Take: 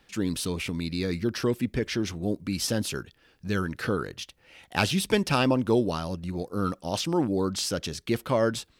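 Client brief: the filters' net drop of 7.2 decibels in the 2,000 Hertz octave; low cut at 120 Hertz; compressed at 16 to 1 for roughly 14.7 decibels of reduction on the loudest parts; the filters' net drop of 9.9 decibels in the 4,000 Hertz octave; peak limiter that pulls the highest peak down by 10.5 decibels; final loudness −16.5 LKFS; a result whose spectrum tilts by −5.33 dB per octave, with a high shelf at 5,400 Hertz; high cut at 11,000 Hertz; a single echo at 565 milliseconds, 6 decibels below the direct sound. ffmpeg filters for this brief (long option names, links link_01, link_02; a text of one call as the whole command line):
ffmpeg -i in.wav -af "highpass=120,lowpass=11000,equalizer=frequency=2000:width_type=o:gain=-7,equalizer=frequency=4000:width_type=o:gain=-7.5,highshelf=frequency=5400:gain=-7.5,acompressor=threshold=-32dB:ratio=16,alimiter=level_in=4dB:limit=-24dB:level=0:latency=1,volume=-4dB,aecho=1:1:565:0.501,volume=22.5dB" out.wav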